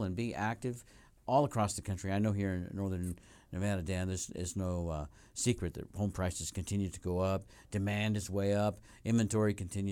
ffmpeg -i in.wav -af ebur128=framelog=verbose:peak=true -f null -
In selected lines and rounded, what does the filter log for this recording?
Integrated loudness:
  I:         -35.3 LUFS
  Threshold: -45.5 LUFS
Loudness range:
  LRA:         3.0 LU
  Threshold: -56.0 LUFS
  LRA low:   -37.3 LUFS
  LRA high:  -34.3 LUFS
True peak:
  Peak:      -17.0 dBFS